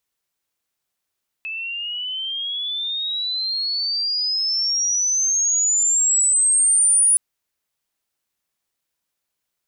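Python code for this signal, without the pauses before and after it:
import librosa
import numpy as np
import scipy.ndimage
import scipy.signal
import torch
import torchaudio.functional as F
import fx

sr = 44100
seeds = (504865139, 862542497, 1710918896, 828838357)

y = fx.chirp(sr, length_s=5.72, from_hz=2600.0, to_hz=9800.0, law='logarithmic', from_db=-26.0, to_db=-12.0)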